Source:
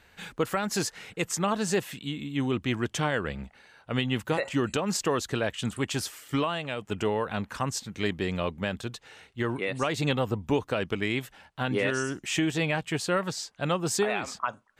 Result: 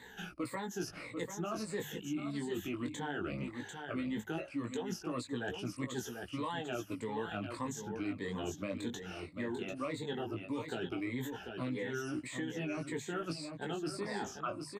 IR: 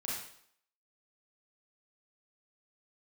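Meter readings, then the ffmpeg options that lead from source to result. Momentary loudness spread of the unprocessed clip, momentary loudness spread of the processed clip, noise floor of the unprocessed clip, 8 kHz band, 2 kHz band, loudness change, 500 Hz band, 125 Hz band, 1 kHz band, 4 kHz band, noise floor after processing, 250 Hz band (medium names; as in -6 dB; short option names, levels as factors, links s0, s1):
7 LU, 3 LU, -61 dBFS, -13.0 dB, -11.0 dB, -10.0 dB, -10.5 dB, -11.5 dB, -10.5 dB, -12.5 dB, -53 dBFS, -7.5 dB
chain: -filter_complex "[0:a]afftfilt=real='re*pow(10,17/40*sin(2*PI*(1*log(max(b,1)*sr/1024/100)/log(2)-(-1.7)*(pts-256)/sr)))':imag='im*pow(10,17/40*sin(2*PI*(1*log(max(b,1)*sr/1024/100)/log(2)-(-1.7)*(pts-256)/sr)))':win_size=1024:overlap=0.75,equalizer=f=310:w=1.8:g=8,bandreject=f=50:t=h:w=6,bandreject=f=100:t=h:w=6,bandreject=f=150:t=h:w=6,areverse,acompressor=threshold=0.0251:ratio=8,areverse,flanger=delay=16:depth=4.6:speed=0.17,aecho=1:1:742:0.335,acrossover=split=120|1600[s0][s1][s2];[s0]acompressor=threshold=0.00141:ratio=4[s3];[s1]acompressor=threshold=0.01:ratio=4[s4];[s2]acompressor=threshold=0.00251:ratio=4[s5];[s3][s4][s5]amix=inputs=3:normalize=0,volume=1.58"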